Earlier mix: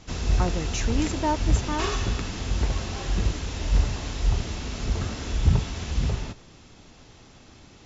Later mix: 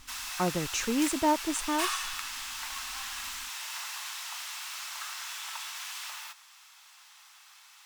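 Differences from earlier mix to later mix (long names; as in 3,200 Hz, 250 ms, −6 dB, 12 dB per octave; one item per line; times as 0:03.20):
background: add Butterworth high-pass 950 Hz 36 dB per octave
master: remove linear-phase brick-wall low-pass 7,500 Hz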